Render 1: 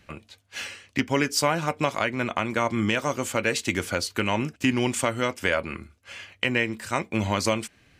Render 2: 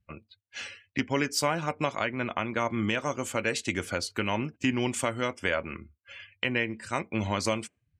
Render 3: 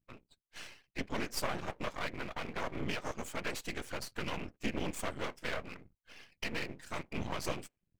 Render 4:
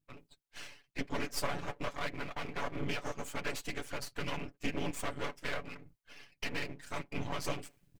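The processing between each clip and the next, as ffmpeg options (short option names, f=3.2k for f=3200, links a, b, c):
-af "afftdn=nr=29:nf=-45,volume=-4dB"
-af "afftfilt=real='hypot(re,im)*cos(2*PI*random(0))':imag='hypot(re,im)*sin(2*PI*random(1))':win_size=512:overlap=0.75,aeval=exprs='max(val(0),0)':c=same,volume=1dB"
-af "aecho=1:1:7:0.55,areverse,acompressor=mode=upward:threshold=-48dB:ratio=2.5,areverse,volume=-1dB"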